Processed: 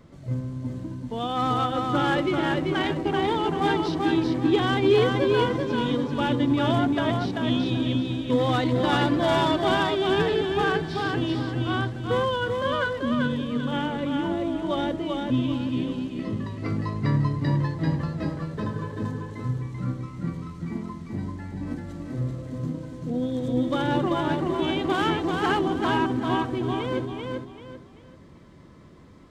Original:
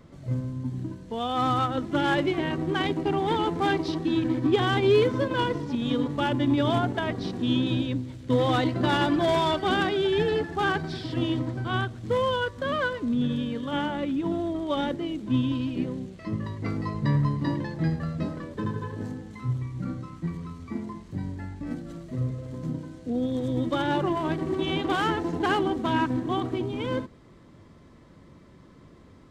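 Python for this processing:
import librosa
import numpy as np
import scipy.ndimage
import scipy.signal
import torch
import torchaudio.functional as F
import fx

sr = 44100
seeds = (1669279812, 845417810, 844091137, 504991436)

y = fx.echo_feedback(x, sr, ms=388, feedback_pct=31, wet_db=-3.5)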